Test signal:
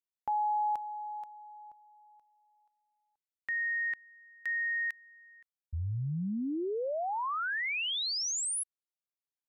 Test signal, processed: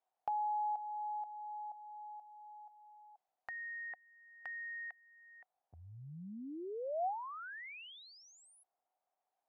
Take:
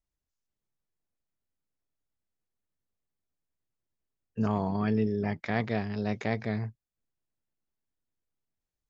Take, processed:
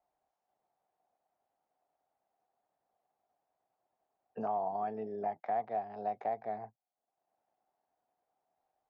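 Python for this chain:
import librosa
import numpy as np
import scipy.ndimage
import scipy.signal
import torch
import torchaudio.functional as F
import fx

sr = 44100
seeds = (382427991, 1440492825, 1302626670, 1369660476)

y = fx.bandpass_q(x, sr, hz=740.0, q=7.6)
y = fx.band_squash(y, sr, depth_pct=70)
y = y * 10.0 ** (6.5 / 20.0)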